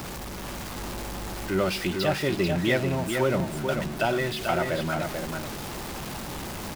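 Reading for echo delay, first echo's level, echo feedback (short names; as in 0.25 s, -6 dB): 0.44 s, -5.5 dB, no steady repeat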